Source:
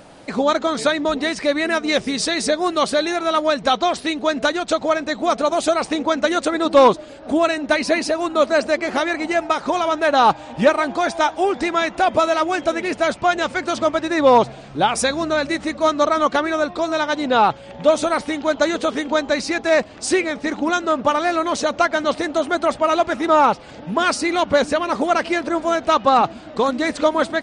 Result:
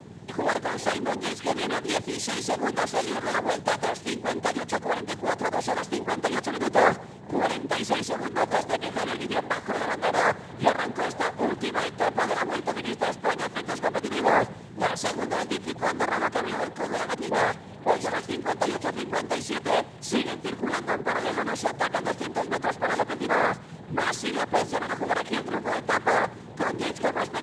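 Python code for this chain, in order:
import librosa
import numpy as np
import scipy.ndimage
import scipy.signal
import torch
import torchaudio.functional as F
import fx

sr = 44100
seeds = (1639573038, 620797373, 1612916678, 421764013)

p1 = fx.add_hum(x, sr, base_hz=60, snr_db=12)
p2 = fx.dispersion(p1, sr, late='highs', ms=43.0, hz=2100.0, at=(17.14, 18.27))
p3 = fx.noise_vocoder(p2, sr, seeds[0], bands=6)
p4 = p3 + fx.echo_feedback(p3, sr, ms=80, feedback_pct=51, wet_db=-24, dry=0)
y = p4 * librosa.db_to_amplitude(-8.0)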